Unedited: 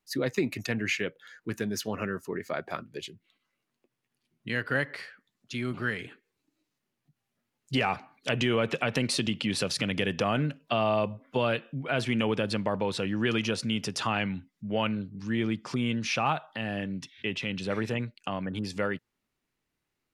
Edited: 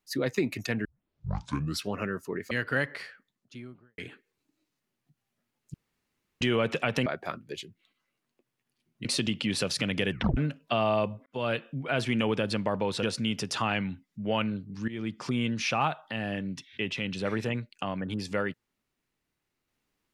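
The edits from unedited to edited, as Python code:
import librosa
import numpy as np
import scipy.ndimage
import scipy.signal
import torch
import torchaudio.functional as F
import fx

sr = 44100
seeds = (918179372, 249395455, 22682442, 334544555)

y = fx.studio_fade_out(x, sr, start_s=5.02, length_s=0.95)
y = fx.edit(y, sr, fx.tape_start(start_s=0.85, length_s=1.09),
    fx.move(start_s=2.51, length_s=1.99, to_s=9.05),
    fx.room_tone_fill(start_s=7.73, length_s=0.67),
    fx.tape_stop(start_s=10.11, length_s=0.26),
    fx.fade_in_span(start_s=11.26, length_s=0.39, curve='qsin'),
    fx.cut(start_s=13.03, length_s=0.45),
    fx.fade_in_from(start_s=15.33, length_s=0.31, floor_db=-15.5), tone=tone)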